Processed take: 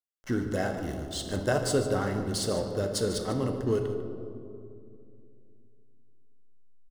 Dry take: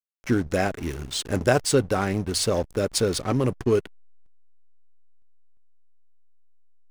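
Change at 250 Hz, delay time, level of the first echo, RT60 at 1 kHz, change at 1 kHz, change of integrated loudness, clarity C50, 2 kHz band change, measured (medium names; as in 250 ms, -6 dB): -4.5 dB, 148 ms, -12.5 dB, 2.2 s, -6.0 dB, -5.5 dB, 5.5 dB, -6.5 dB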